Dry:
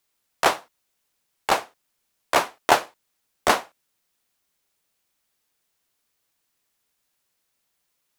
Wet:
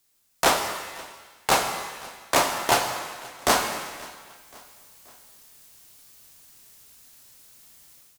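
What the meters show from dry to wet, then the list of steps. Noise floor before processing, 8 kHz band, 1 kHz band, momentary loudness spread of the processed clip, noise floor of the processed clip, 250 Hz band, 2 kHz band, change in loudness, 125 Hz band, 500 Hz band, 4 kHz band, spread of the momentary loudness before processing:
-75 dBFS, +6.0 dB, -0.5 dB, 18 LU, -66 dBFS, +1.5 dB, 0.0 dB, -1.0 dB, +4.5 dB, -0.5 dB, +2.5 dB, 5 LU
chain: tone controls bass +7 dB, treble +7 dB; AGC gain up to 15 dB; soft clip -12.5 dBFS, distortion -10 dB; feedback echo 0.529 s, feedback 51%, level -22.5 dB; shimmer reverb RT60 1.3 s, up +7 st, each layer -8 dB, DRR 4 dB

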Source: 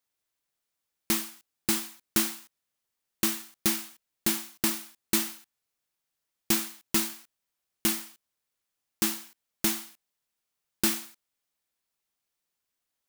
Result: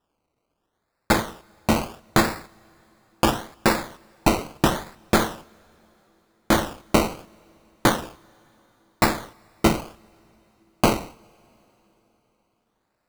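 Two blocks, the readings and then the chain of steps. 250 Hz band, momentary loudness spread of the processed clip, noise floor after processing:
+9.0 dB, 11 LU, -76 dBFS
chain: decimation with a swept rate 20×, swing 60% 0.75 Hz; two-slope reverb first 0.38 s, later 4 s, from -18 dB, DRR 19.5 dB; gain +7.5 dB

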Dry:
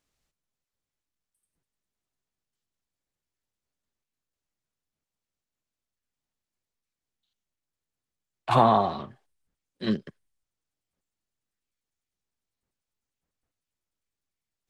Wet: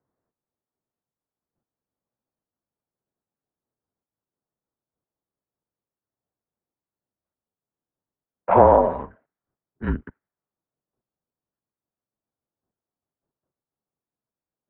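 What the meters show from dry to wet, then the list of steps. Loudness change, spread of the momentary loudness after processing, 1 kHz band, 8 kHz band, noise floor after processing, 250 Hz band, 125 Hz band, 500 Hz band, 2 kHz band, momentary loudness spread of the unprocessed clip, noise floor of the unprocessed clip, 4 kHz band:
+6.0 dB, 19 LU, +4.0 dB, n/a, under -85 dBFS, +1.5 dB, +2.0 dB, +9.0 dB, +2.5 dB, 18 LU, under -85 dBFS, under -15 dB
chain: mistuned SSB -150 Hz 250–2100 Hz; low-pass opened by the level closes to 870 Hz, open at -32.5 dBFS; gain +6.5 dB

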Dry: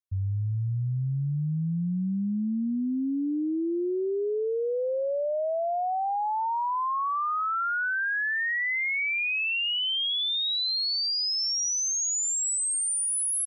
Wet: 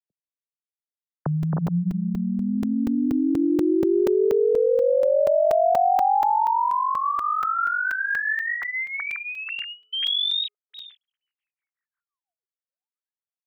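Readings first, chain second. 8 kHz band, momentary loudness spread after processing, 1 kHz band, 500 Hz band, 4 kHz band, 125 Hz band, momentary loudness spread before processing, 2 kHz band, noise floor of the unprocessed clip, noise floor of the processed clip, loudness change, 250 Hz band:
under -30 dB, 10 LU, +6.5 dB, +8.5 dB, -1.5 dB, -0.5 dB, 5 LU, +1.0 dB, -28 dBFS, under -85 dBFS, +4.0 dB, +5.5 dB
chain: sine-wave speech; bell 2600 Hz -12 dB 0.79 oct; in parallel at +2.5 dB: compressor, threshold -34 dBFS, peak gain reduction 12.5 dB; on the sum: crackling interface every 0.24 s, samples 128, zero, from 0.71; gain +2 dB

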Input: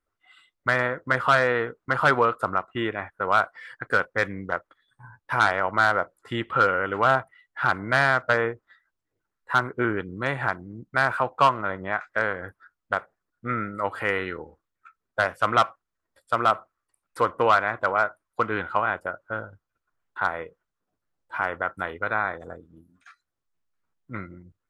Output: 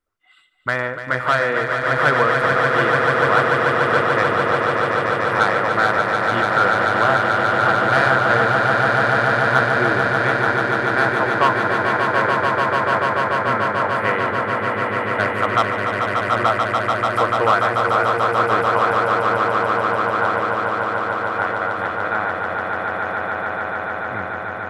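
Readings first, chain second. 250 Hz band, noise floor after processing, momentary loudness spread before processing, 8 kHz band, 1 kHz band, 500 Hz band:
+8.0 dB, -27 dBFS, 14 LU, n/a, +8.0 dB, +8.5 dB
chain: swelling echo 0.146 s, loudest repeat 8, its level -5.5 dB; gain +1 dB

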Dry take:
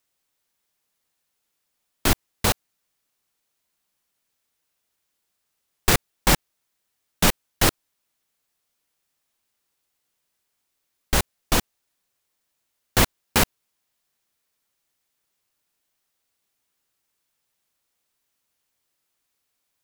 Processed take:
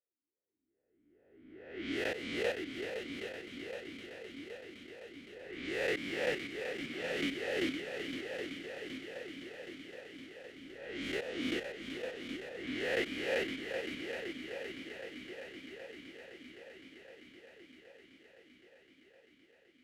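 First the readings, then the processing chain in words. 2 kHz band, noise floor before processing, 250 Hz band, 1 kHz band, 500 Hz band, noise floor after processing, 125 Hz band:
-7.5 dB, -77 dBFS, -7.5 dB, -19.5 dB, -4.0 dB, -74 dBFS, -22.5 dB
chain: spectral swells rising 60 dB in 1.63 s; dynamic EQ 930 Hz, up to +5 dB, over -34 dBFS, Q 0.84; low-pass opened by the level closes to 860 Hz, open at -13.5 dBFS; vocal rider 2 s; on a send: multi-head echo 0.257 s, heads second and third, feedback 72%, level -8 dB; on the sum: vowel sweep e-i 2.4 Hz; gain -5 dB

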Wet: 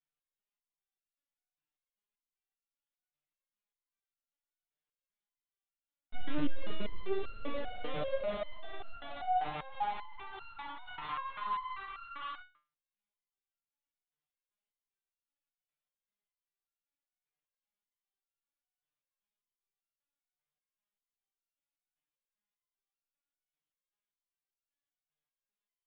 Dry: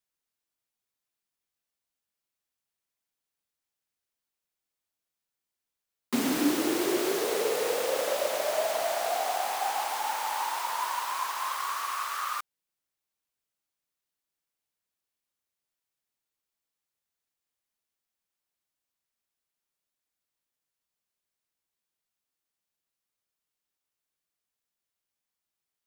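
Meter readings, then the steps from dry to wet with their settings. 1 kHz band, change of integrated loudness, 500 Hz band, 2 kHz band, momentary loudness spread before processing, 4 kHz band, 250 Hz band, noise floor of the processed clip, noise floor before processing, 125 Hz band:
-7.5 dB, -10.5 dB, -11.0 dB, -11.0 dB, 5 LU, -13.0 dB, -12.0 dB, under -85 dBFS, under -85 dBFS, +2.5 dB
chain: LPC vocoder at 8 kHz pitch kept; stepped resonator 5.1 Hz 150–1400 Hz; gain +6 dB

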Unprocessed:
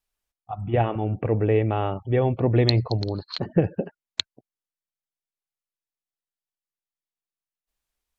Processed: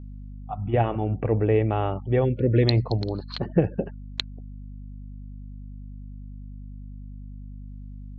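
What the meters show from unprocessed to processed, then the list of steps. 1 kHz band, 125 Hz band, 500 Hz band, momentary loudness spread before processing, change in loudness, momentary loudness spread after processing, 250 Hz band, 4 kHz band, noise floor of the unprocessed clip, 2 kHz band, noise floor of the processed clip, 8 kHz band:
-1.0 dB, 0.0 dB, -0.5 dB, 10 LU, -0.5 dB, 20 LU, 0.0 dB, -3.5 dB, under -85 dBFS, -1.0 dB, -39 dBFS, n/a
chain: spectral gain 2.25–2.63, 610–1400 Hz -29 dB; hum 50 Hz, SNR 12 dB; air absorption 110 m

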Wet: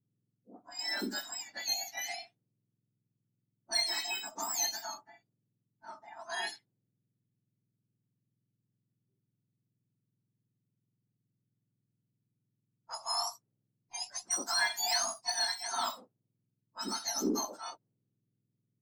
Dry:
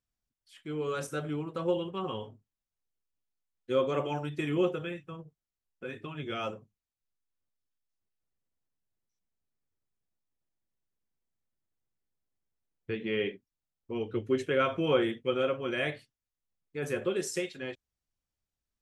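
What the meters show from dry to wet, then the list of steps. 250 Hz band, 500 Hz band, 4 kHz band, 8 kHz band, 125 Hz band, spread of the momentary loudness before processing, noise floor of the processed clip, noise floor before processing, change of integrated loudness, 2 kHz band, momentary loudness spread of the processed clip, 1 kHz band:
-9.0 dB, -15.0 dB, +8.0 dB, n/a, under -20 dB, 16 LU, -85 dBFS, under -85 dBFS, -1.0 dB, 0.0 dB, 16 LU, 0.0 dB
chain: spectrum mirrored in octaves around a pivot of 1500 Hz; added harmonics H 5 -28 dB, 6 -35 dB, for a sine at -18 dBFS; low-pass opened by the level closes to 310 Hz, open at -33 dBFS

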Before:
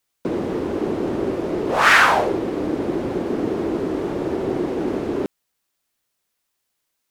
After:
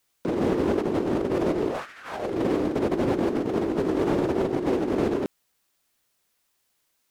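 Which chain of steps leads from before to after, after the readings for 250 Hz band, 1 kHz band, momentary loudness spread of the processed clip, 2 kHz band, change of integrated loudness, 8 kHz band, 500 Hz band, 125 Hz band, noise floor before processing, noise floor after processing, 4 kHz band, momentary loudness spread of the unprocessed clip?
-1.5 dB, -10.5 dB, 6 LU, -18.0 dB, -5.0 dB, under -10 dB, -2.0 dB, -0.5 dB, -76 dBFS, -73 dBFS, -13.5 dB, 11 LU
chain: dynamic EQ 930 Hz, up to -6 dB, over -31 dBFS, Q 2.8; negative-ratio compressor -25 dBFS, ratio -0.5

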